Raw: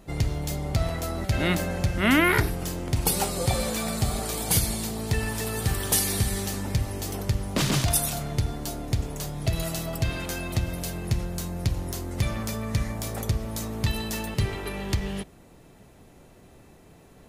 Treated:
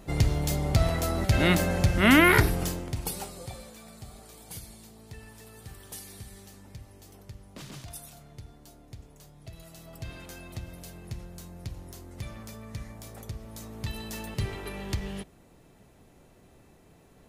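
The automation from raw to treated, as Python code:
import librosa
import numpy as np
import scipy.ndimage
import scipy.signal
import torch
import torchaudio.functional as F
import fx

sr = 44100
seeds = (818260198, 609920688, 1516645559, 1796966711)

y = fx.gain(x, sr, db=fx.line((2.63, 2.0), (2.92, -7.0), (3.72, -19.5), (9.66, -19.5), (10.09, -12.5), (13.32, -12.5), (14.45, -5.0)))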